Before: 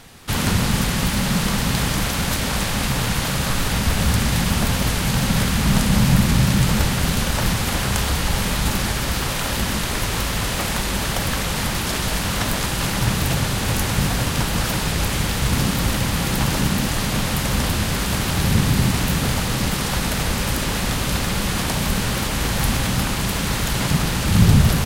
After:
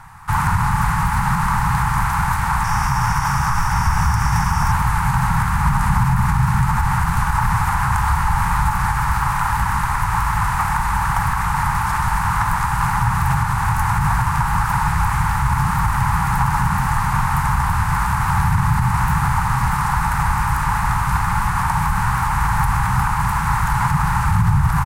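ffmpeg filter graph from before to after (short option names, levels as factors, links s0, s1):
-filter_complex "[0:a]asettb=1/sr,asplit=3[s0][s1][s2];[s0]atrim=end=2.644[s3];[s1]atrim=start=2.64:end=4.72,asetpts=PTS-STARTPTS,afade=t=in:d=0.004:c=qsin,afade=t=out:st=2.076:d=0.004:c=qsin,equalizer=f=5600:t=o:w=0.28:g=14,bandreject=f=4100:w=7.8[s4];[s2]atrim=start=4.716[s5];[s3][s4]acrossfade=d=0.004:c1=hsin:c2=qsin[s6];[s6][s5]acrossfade=d=0.004:c1=qsin:c2=hsin,firequalizer=gain_entry='entry(150,0);entry(230,-18);entry(570,-24);entry(860,10);entry(3200,-18);entry(8600,-6)':delay=0.05:min_phase=1,alimiter=limit=0.251:level=0:latency=1:release=76,highshelf=f=8500:g=-6.5,volume=1.68"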